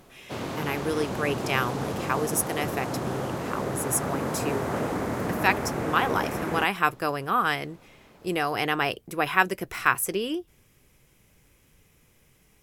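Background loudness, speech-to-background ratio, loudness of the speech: −31.0 LKFS, 3.5 dB, −27.5 LKFS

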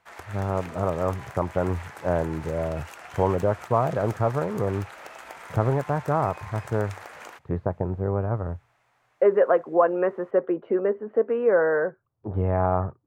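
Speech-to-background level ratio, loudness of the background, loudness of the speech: 16.5 dB, −42.0 LKFS, −25.5 LKFS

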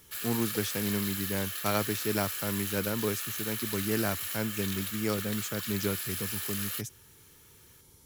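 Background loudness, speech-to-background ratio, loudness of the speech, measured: −33.5 LKFS, 0.0 dB, −33.5 LKFS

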